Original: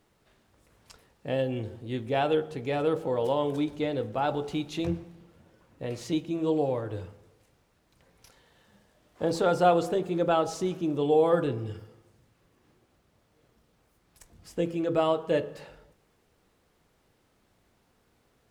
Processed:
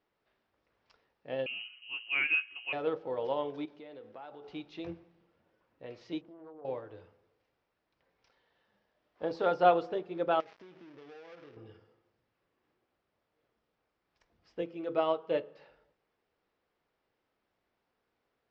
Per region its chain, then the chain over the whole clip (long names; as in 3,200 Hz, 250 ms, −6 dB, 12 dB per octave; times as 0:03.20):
0:01.46–0:02.73: voice inversion scrambler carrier 3,000 Hz + dynamic equaliser 580 Hz, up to −6 dB, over −56 dBFS, Q 2.7
0:03.65–0:04.48: high-pass filter 150 Hz + downward compressor 8 to 1, threshold −32 dBFS
0:06.21–0:06.65: high shelf with overshoot 2,000 Hz −13 dB, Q 1.5 + downward compressor 5 to 1, threshold −36 dBFS + highs frequency-modulated by the lows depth 0.33 ms
0:10.40–0:11.57: gap after every zero crossing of 0.29 ms + high-pass filter 43 Hz + downward compressor 12 to 1, threshold −35 dBFS
0:14.62–0:15.59: high-pass filter 96 Hz + notch filter 1,700 Hz, Q 13
whole clip: Chebyshev low-pass filter 5,400 Hz, order 4; bass and treble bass −10 dB, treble −7 dB; expander for the loud parts 1.5 to 1, over −38 dBFS